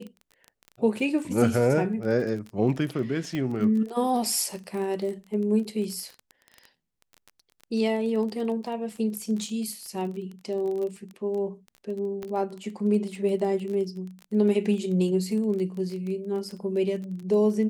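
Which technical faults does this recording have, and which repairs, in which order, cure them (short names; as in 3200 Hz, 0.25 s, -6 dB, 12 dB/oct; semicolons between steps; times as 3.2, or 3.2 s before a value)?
crackle 21/s -33 dBFS
3.35 pop -19 dBFS
12.23 pop -22 dBFS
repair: de-click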